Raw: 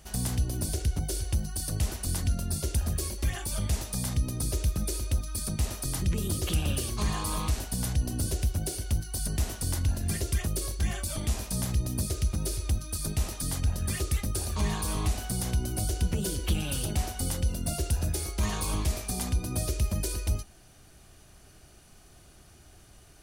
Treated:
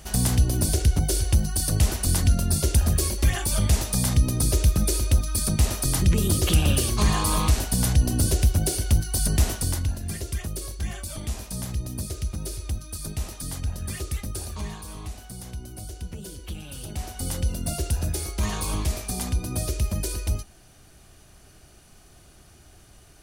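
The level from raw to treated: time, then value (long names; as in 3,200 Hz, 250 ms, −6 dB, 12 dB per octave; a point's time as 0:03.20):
0:09.49 +8 dB
0:10.00 −1.5 dB
0:14.44 −1.5 dB
0:14.84 −8 dB
0:16.69 −8 dB
0:17.37 +2.5 dB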